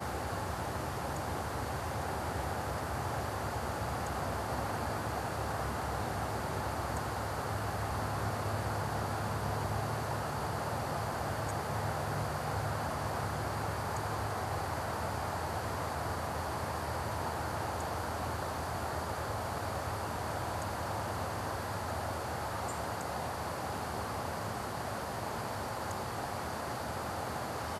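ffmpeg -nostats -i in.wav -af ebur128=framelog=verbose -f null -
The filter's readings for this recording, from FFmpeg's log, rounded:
Integrated loudness:
  I:         -36.4 LUFS
  Threshold: -46.4 LUFS
Loudness range:
  LRA:         2.0 LU
  Threshold: -56.3 LUFS
  LRA low:   -37.5 LUFS
  LRA high:  -35.5 LUFS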